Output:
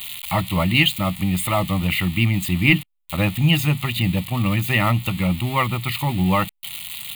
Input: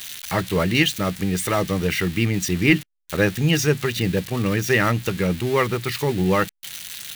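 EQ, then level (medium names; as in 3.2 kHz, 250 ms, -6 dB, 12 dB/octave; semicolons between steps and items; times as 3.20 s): static phaser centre 1.6 kHz, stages 6; +4.5 dB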